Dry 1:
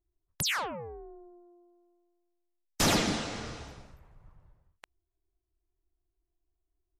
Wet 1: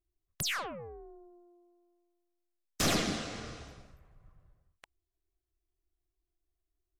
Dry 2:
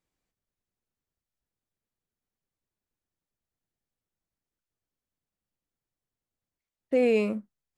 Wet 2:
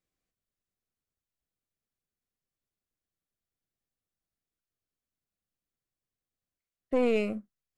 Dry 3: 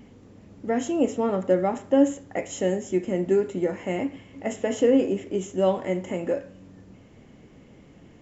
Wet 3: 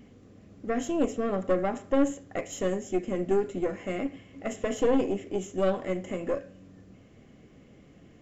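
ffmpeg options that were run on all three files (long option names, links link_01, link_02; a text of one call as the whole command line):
ffmpeg -i in.wav -af "aeval=exprs='(tanh(7.08*val(0)+0.65)-tanh(0.65))/7.08':channel_layout=same,asuperstop=centerf=900:order=4:qfactor=6.5" out.wav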